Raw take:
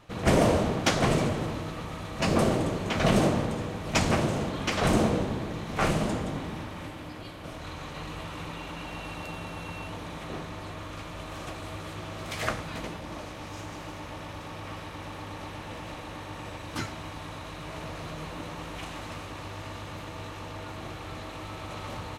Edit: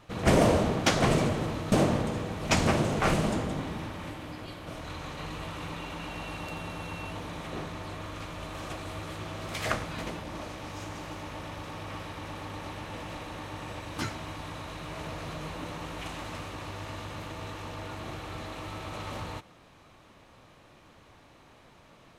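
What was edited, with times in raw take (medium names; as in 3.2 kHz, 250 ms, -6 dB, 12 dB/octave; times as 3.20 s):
1.72–3.16 s: delete
4.44–5.77 s: delete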